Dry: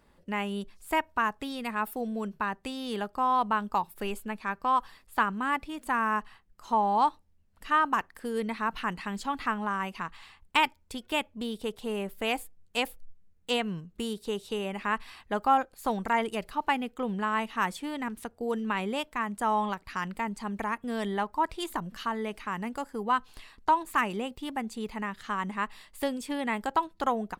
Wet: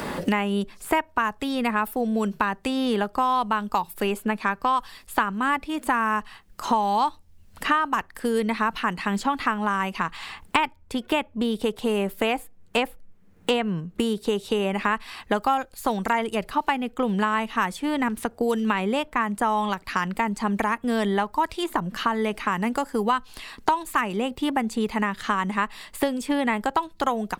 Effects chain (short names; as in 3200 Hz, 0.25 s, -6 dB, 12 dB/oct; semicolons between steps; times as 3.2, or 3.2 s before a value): three-band squash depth 100%; gain +5 dB